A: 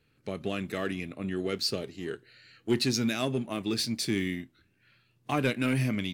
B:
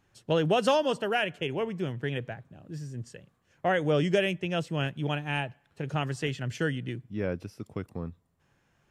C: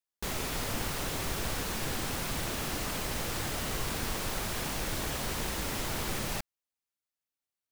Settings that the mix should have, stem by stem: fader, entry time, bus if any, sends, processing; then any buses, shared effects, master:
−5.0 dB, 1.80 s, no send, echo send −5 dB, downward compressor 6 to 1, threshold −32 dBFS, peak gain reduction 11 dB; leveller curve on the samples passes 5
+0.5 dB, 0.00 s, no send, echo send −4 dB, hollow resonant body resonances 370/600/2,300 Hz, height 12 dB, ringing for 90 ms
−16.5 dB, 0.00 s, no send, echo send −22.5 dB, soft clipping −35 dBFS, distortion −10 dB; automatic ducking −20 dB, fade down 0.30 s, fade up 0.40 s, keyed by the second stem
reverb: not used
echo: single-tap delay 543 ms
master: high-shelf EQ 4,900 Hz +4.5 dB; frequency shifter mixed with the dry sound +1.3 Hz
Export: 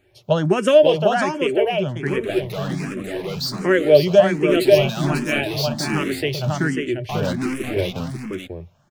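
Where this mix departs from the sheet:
stem A: missing downward compressor 6 to 1, threshold −32 dBFS, peak gain reduction 11 dB
stem B +0.5 dB → +8.5 dB
master: missing high-shelf EQ 4,900 Hz +4.5 dB

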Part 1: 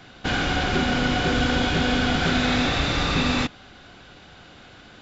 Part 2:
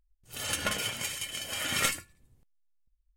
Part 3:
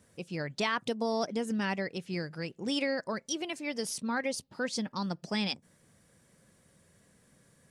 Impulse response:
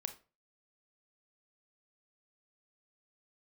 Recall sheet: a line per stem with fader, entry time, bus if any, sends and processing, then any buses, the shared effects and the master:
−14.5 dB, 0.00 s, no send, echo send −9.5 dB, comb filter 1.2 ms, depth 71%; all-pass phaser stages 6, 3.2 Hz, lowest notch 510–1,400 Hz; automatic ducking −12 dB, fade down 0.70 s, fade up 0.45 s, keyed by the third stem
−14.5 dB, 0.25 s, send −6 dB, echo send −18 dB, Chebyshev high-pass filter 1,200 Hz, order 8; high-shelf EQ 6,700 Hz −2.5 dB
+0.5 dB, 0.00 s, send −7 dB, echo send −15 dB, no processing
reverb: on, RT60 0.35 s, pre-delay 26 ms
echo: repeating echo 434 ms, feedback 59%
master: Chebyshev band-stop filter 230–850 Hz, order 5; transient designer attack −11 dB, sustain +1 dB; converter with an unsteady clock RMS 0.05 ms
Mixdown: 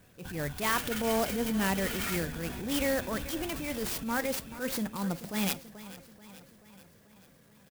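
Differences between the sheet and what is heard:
stem 2 −14.5 dB → −6.5 dB
master: missing Chebyshev band-stop filter 230–850 Hz, order 5

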